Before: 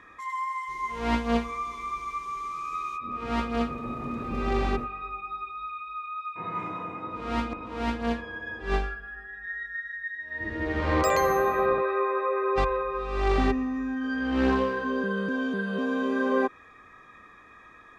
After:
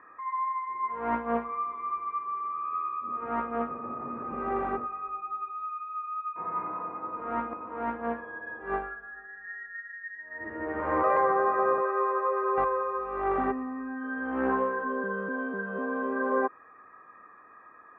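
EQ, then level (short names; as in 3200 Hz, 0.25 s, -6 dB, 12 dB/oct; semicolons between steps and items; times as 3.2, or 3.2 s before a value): HPF 700 Hz 6 dB/oct; LPF 1500 Hz 24 dB/oct; +3.0 dB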